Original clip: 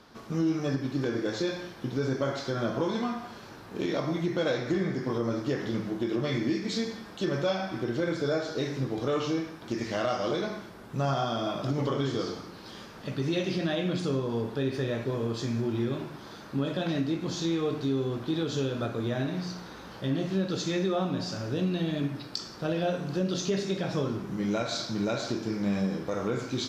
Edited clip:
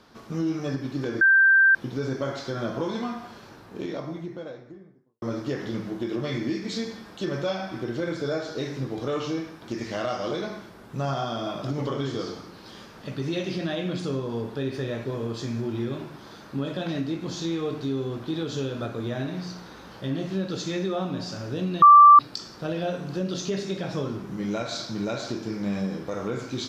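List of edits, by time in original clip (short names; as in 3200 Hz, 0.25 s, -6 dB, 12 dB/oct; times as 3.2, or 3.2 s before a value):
1.21–1.75 bleep 1570 Hz -13.5 dBFS
3.25–5.22 studio fade out
21.82–22.19 bleep 1170 Hz -7.5 dBFS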